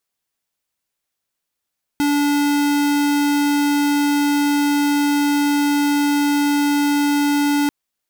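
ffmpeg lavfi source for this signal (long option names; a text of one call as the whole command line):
ffmpeg -f lavfi -i "aevalsrc='0.141*(2*lt(mod(289*t,1),0.5)-1)':duration=5.69:sample_rate=44100" out.wav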